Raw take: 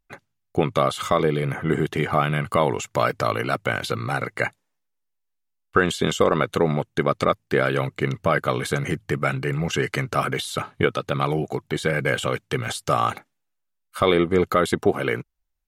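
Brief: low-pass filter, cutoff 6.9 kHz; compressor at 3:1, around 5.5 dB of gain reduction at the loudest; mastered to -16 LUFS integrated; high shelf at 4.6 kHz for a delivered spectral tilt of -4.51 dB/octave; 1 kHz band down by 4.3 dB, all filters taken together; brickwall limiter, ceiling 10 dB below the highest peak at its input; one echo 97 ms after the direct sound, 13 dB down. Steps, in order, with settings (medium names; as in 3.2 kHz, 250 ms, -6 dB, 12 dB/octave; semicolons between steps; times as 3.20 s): low-pass 6.9 kHz; peaking EQ 1 kHz -6.5 dB; treble shelf 4.6 kHz +8 dB; compression 3:1, threshold -22 dBFS; peak limiter -18.5 dBFS; delay 97 ms -13 dB; trim +14.5 dB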